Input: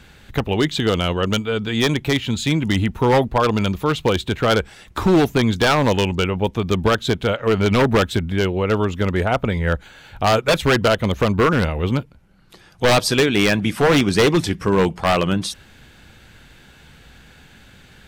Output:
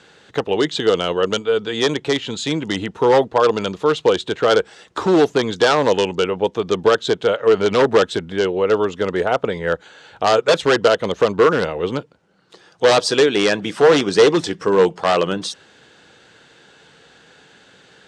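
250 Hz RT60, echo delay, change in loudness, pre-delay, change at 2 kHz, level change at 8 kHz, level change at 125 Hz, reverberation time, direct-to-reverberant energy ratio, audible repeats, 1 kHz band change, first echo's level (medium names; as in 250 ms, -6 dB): no reverb, no echo, +1.0 dB, no reverb, -1.0 dB, -0.5 dB, -9.5 dB, no reverb, no reverb, no echo, +1.0 dB, no echo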